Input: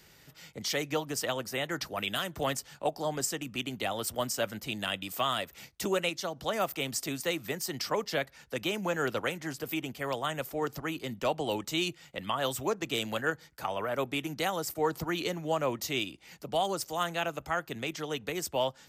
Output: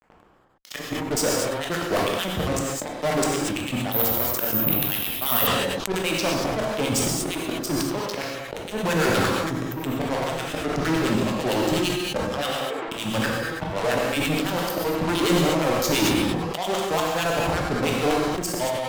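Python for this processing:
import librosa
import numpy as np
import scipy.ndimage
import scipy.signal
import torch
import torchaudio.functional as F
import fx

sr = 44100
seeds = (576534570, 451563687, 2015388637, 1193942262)

p1 = fx.wiener(x, sr, points=25)
p2 = fx.auto_swell(p1, sr, attack_ms=710.0)
p3 = fx.harmonic_tremolo(p2, sr, hz=8.8, depth_pct=100, crossover_hz=1300.0)
p4 = fx.fuzz(p3, sr, gain_db=54.0, gate_db=-58.0)
p5 = fx.bandpass_edges(p4, sr, low_hz=590.0, high_hz=2300.0, at=(12.46, 12.88))
p6 = p5 + fx.echo_single(p5, sr, ms=95, db=-15.5, dry=0)
p7 = fx.rev_gated(p6, sr, seeds[0], gate_ms=260, shape='flat', drr_db=-1.0)
p8 = fx.resample_bad(p7, sr, factor=3, down='filtered', up='zero_stuff', at=(3.92, 5.47))
p9 = fx.sustainer(p8, sr, db_per_s=23.0)
y = p9 * 10.0 ** (-8.5 / 20.0)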